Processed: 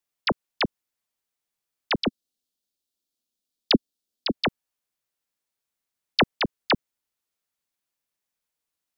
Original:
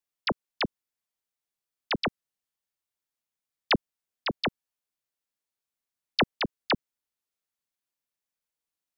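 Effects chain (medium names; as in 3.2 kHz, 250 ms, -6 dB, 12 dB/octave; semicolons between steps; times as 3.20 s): 2.04–4.34 s: ten-band graphic EQ 125 Hz -9 dB, 250 Hz +8 dB, 1 kHz -8 dB, 2 kHz -11 dB, 4 kHz +6 dB; trim +4 dB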